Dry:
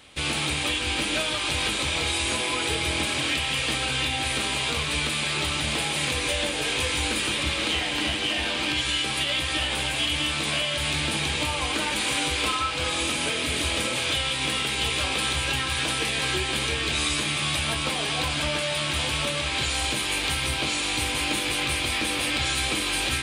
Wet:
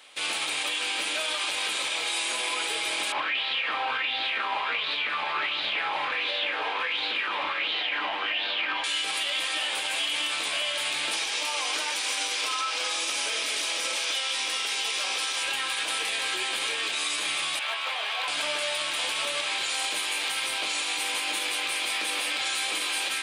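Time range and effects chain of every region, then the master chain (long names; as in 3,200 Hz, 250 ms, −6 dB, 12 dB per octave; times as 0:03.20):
0:03.12–0:08.84: high-frequency loss of the air 350 metres + auto-filter bell 1.4 Hz 870–4,100 Hz +14 dB
0:11.13–0:15.43: high-pass filter 220 Hz + parametric band 5,600 Hz +9.5 dB 0.42 octaves
0:17.59–0:18.28: three-way crossover with the lows and the highs turned down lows −22 dB, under 500 Hz, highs −17 dB, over 3,900 Hz + gain into a clipping stage and back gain 23 dB + high-pass filter 140 Hz
whole clip: high-pass filter 580 Hz 12 dB per octave; brickwall limiter −19.5 dBFS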